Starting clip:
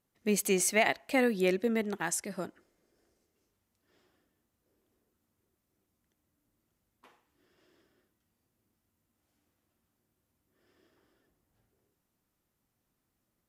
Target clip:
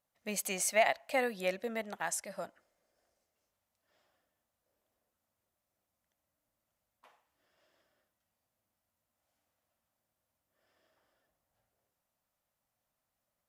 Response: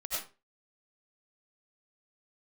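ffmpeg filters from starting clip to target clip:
-af "lowshelf=f=480:t=q:w=3:g=-6.5,volume=-3.5dB"

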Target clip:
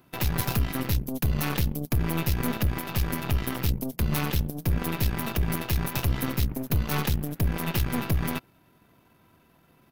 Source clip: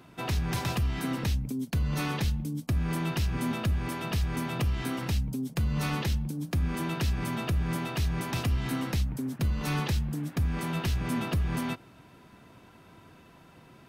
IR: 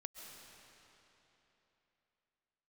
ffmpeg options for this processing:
-af "atempo=1.4,aeval=exprs='0.106*(cos(1*acos(clip(val(0)/0.106,-1,1)))-cos(1*PI/2))+0.0188*(cos(4*acos(clip(val(0)/0.106,-1,1)))-cos(4*PI/2))+0.00944*(cos(7*acos(clip(val(0)/0.106,-1,1)))-cos(7*PI/2))':c=same,aexciter=amount=5.2:drive=2.8:freq=11k,volume=2dB"

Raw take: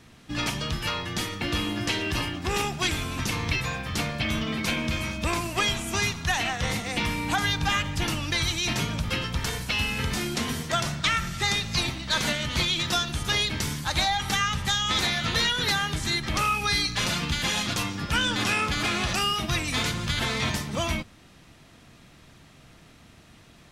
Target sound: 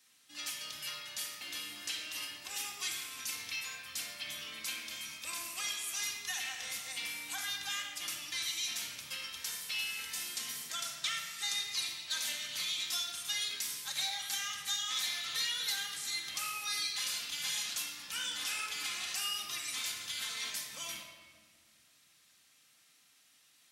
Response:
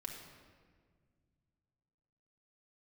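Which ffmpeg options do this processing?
-filter_complex "[0:a]aderivative[a];[1:a]atrim=start_sample=2205[b];[a][b]afir=irnorm=-1:irlink=0"

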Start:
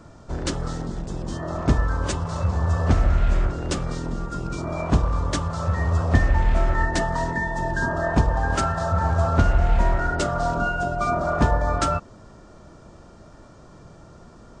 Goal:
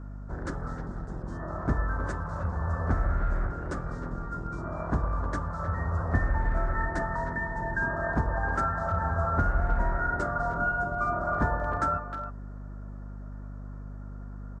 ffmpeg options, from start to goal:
-filter_complex "[0:a]highshelf=f=2.1k:t=q:w=3:g=-10,asplit=2[a][b];[b]adelay=310,highpass=300,lowpass=3.4k,asoftclip=type=hard:threshold=-12.5dB,volume=-9dB[c];[a][c]amix=inputs=2:normalize=0,aeval=exprs='val(0)+0.0316*(sin(2*PI*50*n/s)+sin(2*PI*2*50*n/s)/2+sin(2*PI*3*50*n/s)/3+sin(2*PI*4*50*n/s)/4+sin(2*PI*5*50*n/s)/5)':c=same,volume=-8.5dB"

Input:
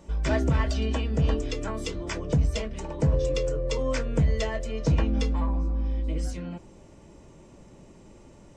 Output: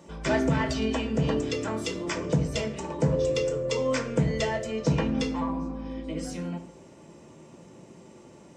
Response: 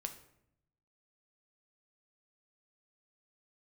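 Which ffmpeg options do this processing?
-filter_complex "[0:a]highpass=150[a];[1:a]atrim=start_sample=2205[b];[a][b]afir=irnorm=-1:irlink=0,volume=4.5dB"

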